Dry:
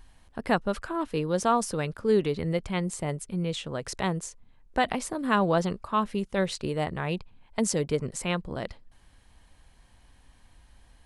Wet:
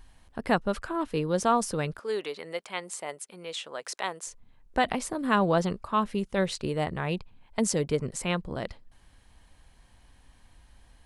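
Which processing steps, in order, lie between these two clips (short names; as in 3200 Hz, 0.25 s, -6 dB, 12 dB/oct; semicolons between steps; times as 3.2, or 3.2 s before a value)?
1.99–4.27 HPF 610 Hz 12 dB/oct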